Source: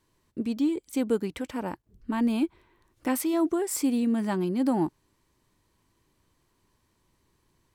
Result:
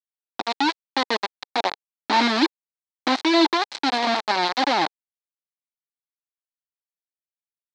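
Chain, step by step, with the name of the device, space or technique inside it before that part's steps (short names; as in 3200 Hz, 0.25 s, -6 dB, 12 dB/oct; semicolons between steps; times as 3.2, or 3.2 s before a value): 1.44–3.45 dynamic EQ 320 Hz, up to +8 dB, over -38 dBFS, Q 0.89; hand-held game console (bit-crush 4-bit; speaker cabinet 460–4800 Hz, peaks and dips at 470 Hz -7 dB, 840 Hz +4 dB, 1400 Hz -3 dB, 2800 Hz -4 dB, 4100 Hz +7 dB); gain +6 dB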